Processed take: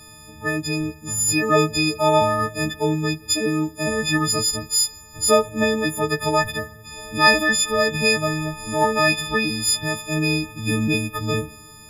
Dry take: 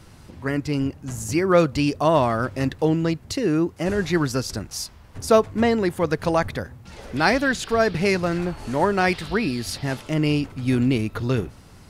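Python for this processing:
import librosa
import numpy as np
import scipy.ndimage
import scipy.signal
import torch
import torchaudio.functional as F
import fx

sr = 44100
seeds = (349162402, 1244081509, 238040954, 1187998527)

y = fx.freq_snap(x, sr, grid_st=6)
y = fx.rev_fdn(y, sr, rt60_s=1.5, lf_ratio=0.85, hf_ratio=0.9, size_ms=21.0, drr_db=16.5)
y = F.gain(torch.from_numpy(y), -1.5).numpy()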